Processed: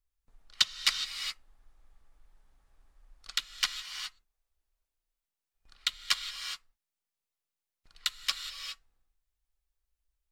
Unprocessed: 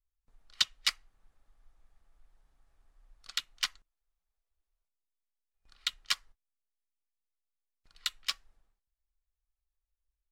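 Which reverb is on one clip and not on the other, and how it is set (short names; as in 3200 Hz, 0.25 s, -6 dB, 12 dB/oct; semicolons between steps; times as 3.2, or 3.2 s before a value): non-linear reverb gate 0.44 s rising, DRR 6.5 dB; gain +2.5 dB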